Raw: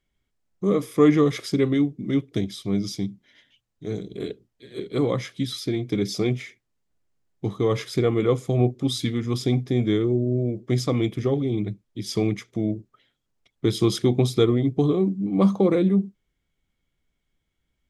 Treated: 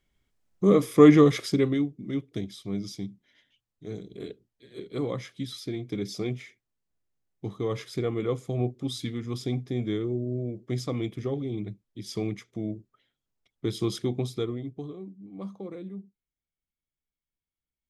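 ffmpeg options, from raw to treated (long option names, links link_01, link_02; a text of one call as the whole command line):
ffmpeg -i in.wav -af "volume=2dB,afade=type=out:start_time=1.18:duration=0.73:silence=0.334965,afade=type=out:start_time=13.95:duration=0.99:silence=0.251189" out.wav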